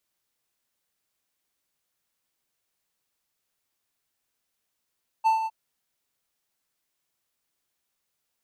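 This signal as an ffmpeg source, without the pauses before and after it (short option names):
-f lavfi -i "aevalsrc='0.188*(1-4*abs(mod(888*t+0.25,1)-0.5))':d=0.261:s=44100,afade=t=in:d=0.025,afade=t=out:st=0.025:d=0.129:silence=0.355,afade=t=out:st=0.22:d=0.041"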